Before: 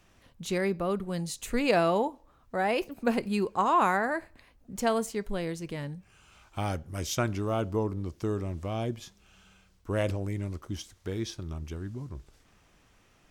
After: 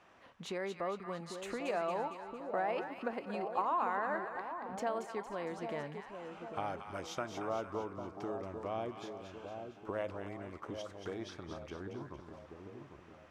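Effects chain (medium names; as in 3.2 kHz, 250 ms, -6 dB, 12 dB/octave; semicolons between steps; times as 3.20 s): compression 6:1, threshold -37 dBFS, peak gain reduction 16.5 dB; band-pass filter 920 Hz, Q 0.8; two-band feedback delay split 930 Hz, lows 798 ms, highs 229 ms, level -6.5 dB; trim +6 dB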